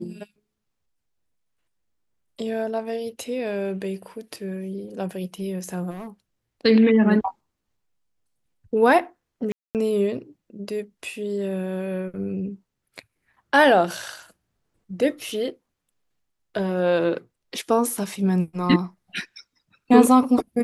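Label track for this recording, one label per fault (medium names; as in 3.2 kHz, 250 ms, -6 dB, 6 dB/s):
5.900000	6.080000	clipped -32 dBFS
9.520000	9.750000	dropout 228 ms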